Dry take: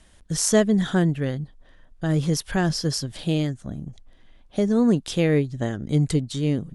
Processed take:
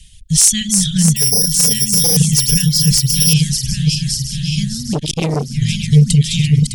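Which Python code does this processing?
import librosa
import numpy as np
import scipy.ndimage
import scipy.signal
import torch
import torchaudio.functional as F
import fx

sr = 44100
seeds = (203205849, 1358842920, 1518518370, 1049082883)

p1 = fx.reverse_delay_fb(x, sr, ms=304, feedback_pct=79, wet_db=-5.0)
p2 = scipy.signal.sosfilt(scipy.signal.ellip(3, 1.0, 50, [150.0, 2700.0], 'bandstop', fs=sr, output='sos'), p1)
p3 = fx.dereverb_blind(p2, sr, rt60_s=1.4)
p4 = fx.resample_bad(p3, sr, factor=8, down='filtered', up='zero_stuff', at=(1.16, 2.17))
p5 = fx.dynamic_eq(p4, sr, hz=8700.0, q=2.3, threshold_db=-40.0, ratio=4.0, max_db=5)
p6 = p5 + fx.echo_single(p5, sr, ms=1164, db=-6.5, dry=0)
p7 = fx.fold_sine(p6, sr, drive_db=12, ceiling_db=-1.5)
p8 = fx.transformer_sat(p7, sr, knee_hz=580.0, at=(4.93, 5.51))
y = p8 * librosa.db_to_amplitude(-1.5)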